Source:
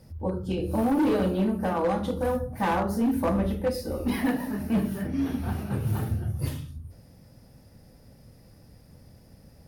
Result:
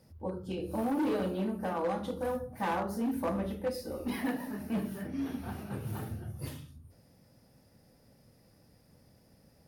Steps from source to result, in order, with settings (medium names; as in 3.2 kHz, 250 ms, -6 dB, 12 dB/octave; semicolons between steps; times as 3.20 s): bass shelf 100 Hz -12 dB; trim -6 dB